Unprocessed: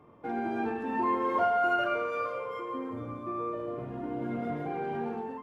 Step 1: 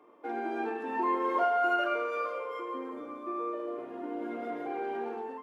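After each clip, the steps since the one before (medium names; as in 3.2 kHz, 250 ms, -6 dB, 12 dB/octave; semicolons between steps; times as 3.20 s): Chebyshev high-pass 310 Hz, order 3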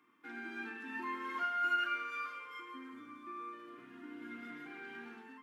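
FFT filter 100 Hz 0 dB, 270 Hz -5 dB, 570 Hz -29 dB, 1.5 kHz +1 dB; trim -1.5 dB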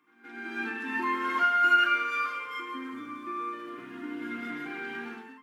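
level rider gain up to 11 dB; reverse echo 173 ms -19 dB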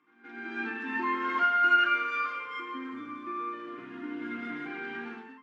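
distance through air 120 m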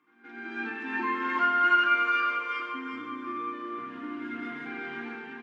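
feedback delay 362 ms, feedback 30%, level -5 dB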